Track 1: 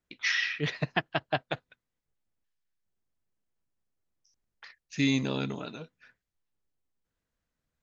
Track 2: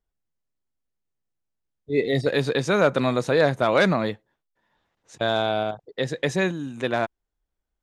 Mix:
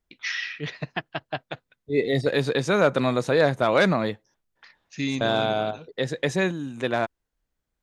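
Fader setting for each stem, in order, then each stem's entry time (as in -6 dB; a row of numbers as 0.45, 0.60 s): -1.5, -0.5 dB; 0.00, 0.00 s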